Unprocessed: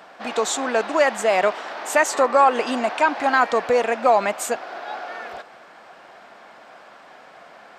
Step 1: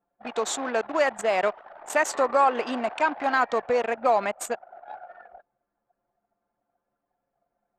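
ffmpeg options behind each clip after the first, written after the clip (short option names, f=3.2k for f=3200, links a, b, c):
-af "anlmdn=158,volume=-5dB"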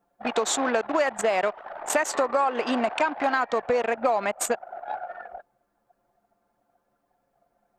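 -af "acompressor=threshold=-29dB:ratio=5,volume=8dB"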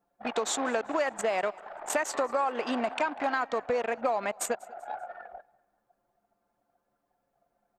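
-af "aecho=1:1:194|388|582:0.0631|0.0259|0.0106,volume=-5dB"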